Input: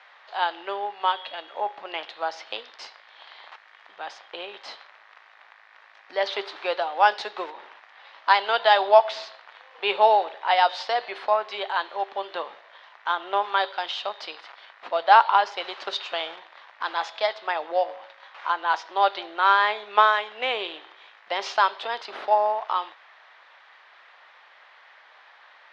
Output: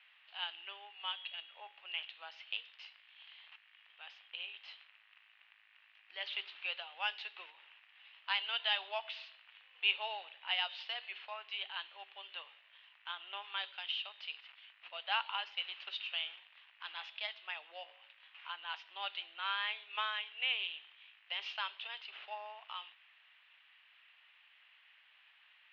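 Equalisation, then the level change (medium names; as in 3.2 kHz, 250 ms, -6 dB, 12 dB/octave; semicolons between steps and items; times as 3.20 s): band-pass filter 2.8 kHz, Q 5.4; distance through air 84 m; 0.0 dB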